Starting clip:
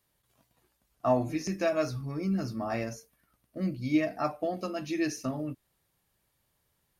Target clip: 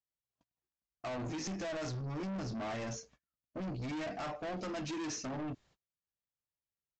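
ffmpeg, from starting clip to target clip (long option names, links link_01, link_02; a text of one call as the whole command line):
ffmpeg -i in.wav -af "acontrast=57,agate=range=-32dB:threshold=-56dB:ratio=16:detection=peak,alimiter=limit=-19dB:level=0:latency=1:release=34,aresample=16000,asoftclip=type=tanh:threshold=-35.5dB,aresample=44100,volume=-1.5dB" out.wav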